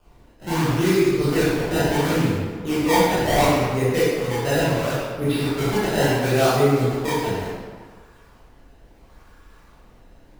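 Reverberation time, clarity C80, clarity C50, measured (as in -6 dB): 1.6 s, -0.5 dB, -3.0 dB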